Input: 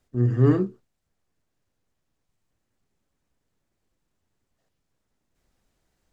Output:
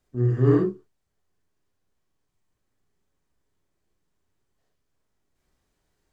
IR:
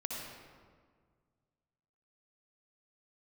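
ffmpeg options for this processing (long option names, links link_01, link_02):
-filter_complex "[1:a]atrim=start_sample=2205,afade=type=out:start_time=0.18:duration=0.01,atrim=end_sample=8379,asetrate=74970,aresample=44100[link_01];[0:a][link_01]afir=irnorm=-1:irlink=0,volume=4dB"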